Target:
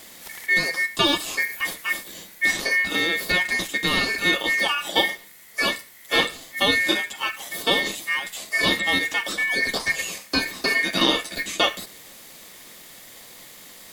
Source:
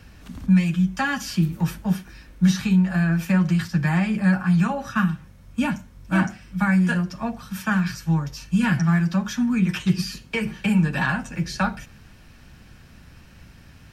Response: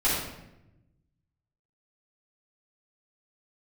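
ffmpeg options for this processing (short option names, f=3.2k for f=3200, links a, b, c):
-filter_complex "[0:a]aemphasis=mode=production:type=riaa,acrossover=split=2900[a][b];[b]acompressor=threshold=-37dB:ratio=4:attack=1:release=60[c];[a][c]amix=inputs=2:normalize=0,aeval=exprs='val(0)*sin(2*PI*2000*n/s)':c=same,volume=7dB"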